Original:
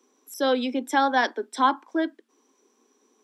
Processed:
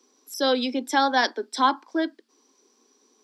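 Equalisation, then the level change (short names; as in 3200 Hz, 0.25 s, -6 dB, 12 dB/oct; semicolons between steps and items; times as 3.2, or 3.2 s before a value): bell 4700 Hz +12 dB 0.57 oct; 0.0 dB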